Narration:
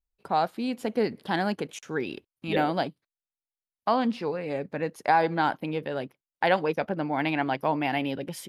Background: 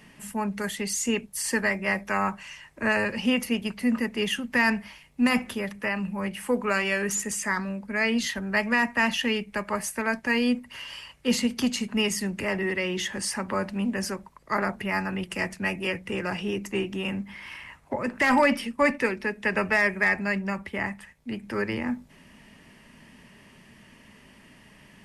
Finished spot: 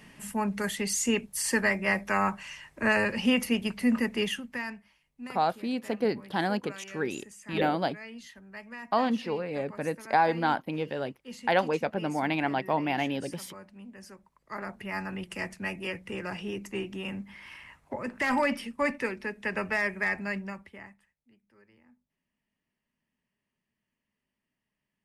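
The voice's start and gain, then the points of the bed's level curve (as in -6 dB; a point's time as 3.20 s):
5.05 s, -1.5 dB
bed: 4.18 s -0.5 dB
4.84 s -19.5 dB
13.94 s -19.5 dB
15.03 s -6 dB
20.39 s -6 dB
21.41 s -33 dB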